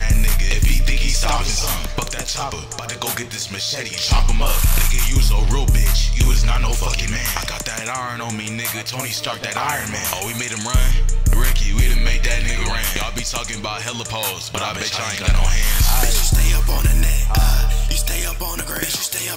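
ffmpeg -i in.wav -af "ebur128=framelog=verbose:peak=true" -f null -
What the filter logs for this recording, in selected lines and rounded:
Integrated loudness:
  I:         -20.1 LUFS
  Threshold: -30.1 LUFS
Loudness range:
  LRA:         3.9 LU
  Threshold: -40.1 LUFS
  LRA low:   -22.1 LUFS
  LRA high:  -18.2 LUFS
True peak:
  Peak:       -6.0 dBFS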